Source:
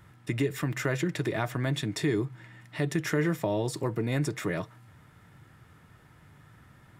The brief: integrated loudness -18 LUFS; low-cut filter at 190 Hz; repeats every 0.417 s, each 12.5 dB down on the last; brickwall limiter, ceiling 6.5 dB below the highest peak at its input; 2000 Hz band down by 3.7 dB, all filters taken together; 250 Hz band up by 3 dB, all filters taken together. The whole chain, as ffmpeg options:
-af "highpass=190,equalizer=f=250:t=o:g=6,equalizer=f=2k:t=o:g=-4.5,alimiter=limit=-20.5dB:level=0:latency=1,aecho=1:1:417|834|1251:0.237|0.0569|0.0137,volume=14dB"

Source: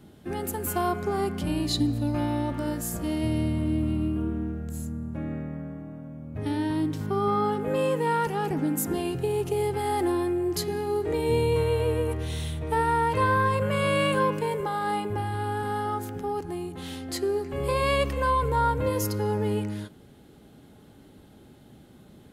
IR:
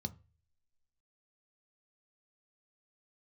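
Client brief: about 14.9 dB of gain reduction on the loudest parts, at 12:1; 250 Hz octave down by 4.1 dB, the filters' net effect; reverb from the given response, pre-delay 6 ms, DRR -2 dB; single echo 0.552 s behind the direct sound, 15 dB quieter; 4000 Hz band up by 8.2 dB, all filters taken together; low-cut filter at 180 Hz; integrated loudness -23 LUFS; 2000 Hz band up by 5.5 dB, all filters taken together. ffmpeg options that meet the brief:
-filter_complex "[0:a]highpass=180,equalizer=f=250:t=o:g=-4.5,equalizer=f=2k:t=o:g=5,equalizer=f=4k:t=o:g=8.5,acompressor=threshold=-30dB:ratio=12,aecho=1:1:552:0.178,asplit=2[a][b];[1:a]atrim=start_sample=2205,adelay=6[c];[b][c]afir=irnorm=-1:irlink=0,volume=4dB[d];[a][d]amix=inputs=2:normalize=0,volume=3.5dB"

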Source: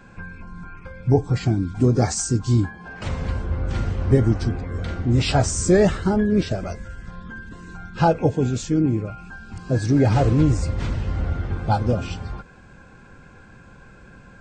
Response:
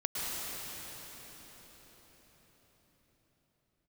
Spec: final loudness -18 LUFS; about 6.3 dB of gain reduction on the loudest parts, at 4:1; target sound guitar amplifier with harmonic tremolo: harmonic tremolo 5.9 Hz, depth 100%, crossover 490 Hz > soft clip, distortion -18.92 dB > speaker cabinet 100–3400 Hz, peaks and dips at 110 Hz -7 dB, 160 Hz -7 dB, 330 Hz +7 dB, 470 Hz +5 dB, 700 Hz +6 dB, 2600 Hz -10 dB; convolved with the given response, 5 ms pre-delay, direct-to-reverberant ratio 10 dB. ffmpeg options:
-filter_complex "[0:a]acompressor=threshold=-19dB:ratio=4,asplit=2[a][b];[1:a]atrim=start_sample=2205,adelay=5[c];[b][c]afir=irnorm=-1:irlink=0,volume=-17dB[d];[a][d]amix=inputs=2:normalize=0,acrossover=split=490[e][f];[e]aeval=exprs='val(0)*(1-1/2+1/2*cos(2*PI*5.9*n/s))':c=same[g];[f]aeval=exprs='val(0)*(1-1/2-1/2*cos(2*PI*5.9*n/s))':c=same[h];[g][h]amix=inputs=2:normalize=0,asoftclip=threshold=-18dB,highpass=100,equalizer=f=110:t=q:w=4:g=-7,equalizer=f=160:t=q:w=4:g=-7,equalizer=f=330:t=q:w=4:g=7,equalizer=f=470:t=q:w=4:g=5,equalizer=f=700:t=q:w=4:g=6,equalizer=f=2.6k:t=q:w=4:g=-10,lowpass=f=3.4k:w=0.5412,lowpass=f=3.4k:w=1.3066,volume=13.5dB"

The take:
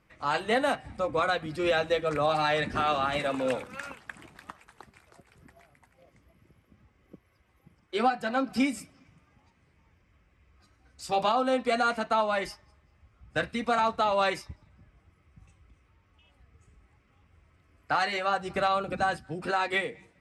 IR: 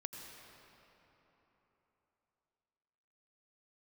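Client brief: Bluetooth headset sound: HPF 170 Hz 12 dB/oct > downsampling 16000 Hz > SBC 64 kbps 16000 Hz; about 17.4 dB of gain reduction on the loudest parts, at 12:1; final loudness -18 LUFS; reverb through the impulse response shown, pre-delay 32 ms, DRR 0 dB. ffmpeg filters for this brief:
-filter_complex "[0:a]acompressor=threshold=-39dB:ratio=12,asplit=2[a][b];[1:a]atrim=start_sample=2205,adelay=32[c];[b][c]afir=irnorm=-1:irlink=0,volume=2dB[d];[a][d]amix=inputs=2:normalize=0,highpass=170,aresample=16000,aresample=44100,volume=23dB" -ar 16000 -c:a sbc -b:a 64k

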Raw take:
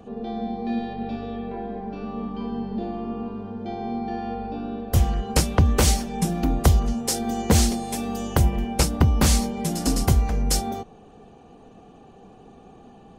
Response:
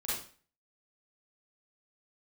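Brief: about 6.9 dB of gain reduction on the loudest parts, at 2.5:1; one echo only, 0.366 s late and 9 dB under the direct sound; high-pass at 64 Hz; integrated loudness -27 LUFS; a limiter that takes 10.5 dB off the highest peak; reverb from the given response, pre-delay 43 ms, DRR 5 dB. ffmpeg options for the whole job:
-filter_complex "[0:a]highpass=64,acompressor=threshold=-24dB:ratio=2.5,alimiter=limit=-19.5dB:level=0:latency=1,aecho=1:1:366:0.355,asplit=2[a][b];[1:a]atrim=start_sample=2205,adelay=43[c];[b][c]afir=irnorm=-1:irlink=0,volume=-8.5dB[d];[a][d]amix=inputs=2:normalize=0,volume=2dB"

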